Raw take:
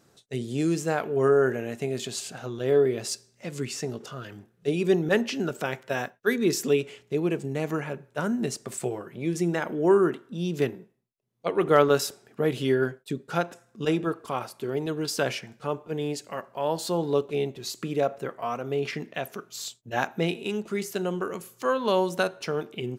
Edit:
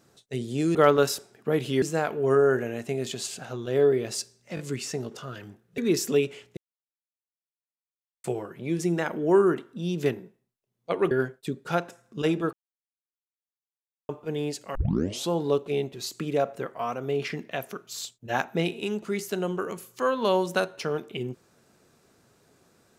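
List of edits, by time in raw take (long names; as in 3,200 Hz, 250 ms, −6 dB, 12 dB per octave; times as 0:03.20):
0:03.48: stutter 0.02 s, 3 plays
0:04.67–0:06.34: remove
0:07.13–0:08.80: silence
0:11.67–0:12.74: move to 0:00.75
0:14.16–0:15.72: silence
0:16.38: tape start 0.55 s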